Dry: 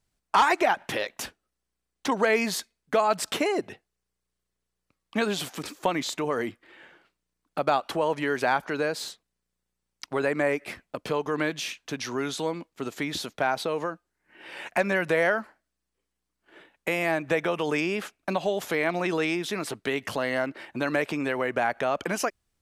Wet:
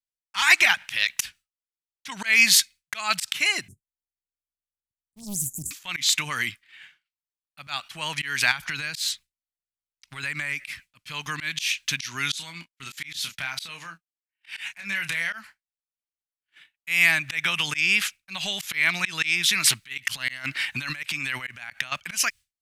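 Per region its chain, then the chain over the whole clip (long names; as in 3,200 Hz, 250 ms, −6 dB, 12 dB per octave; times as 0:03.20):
0:03.68–0:05.71: Chebyshev band-stop filter 400–7,100 Hz, order 5 + low-shelf EQ 170 Hz +10 dB + highs frequency-modulated by the lows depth 0.75 ms
0:08.51–0:10.66: low-shelf EQ 120 Hz +7.5 dB + downward compressor 12 to 1, threshold −28 dBFS
0:12.33–0:15.33: noise gate −47 dBFS, range −14 dB + downward compressor 2.5 to 1, threshold −34 dBFS + double-tracking delay 30 ms −8.5 dB
0:19.64–0:21.92: compressor whose output falls as the input rises −31 dBFS, ratio −0.5 + hard clipping −19 dBFS
whole clip: drawn EQ curve 140 Hz 0 dB, 460 Hz −23 dB, 2,300 Hz +12 dB; downward expander −37 dBFS; volume swells 171 ms; level +3 dB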